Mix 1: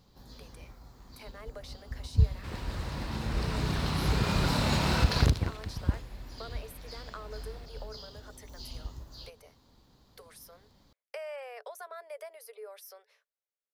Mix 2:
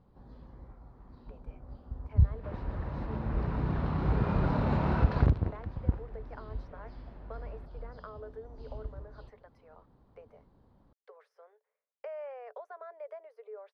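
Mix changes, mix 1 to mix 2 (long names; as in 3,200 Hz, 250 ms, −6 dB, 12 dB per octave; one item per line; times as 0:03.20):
speech: entry +0.90 s
master: add low-pass filter 1,200 Hz 12 dB per octave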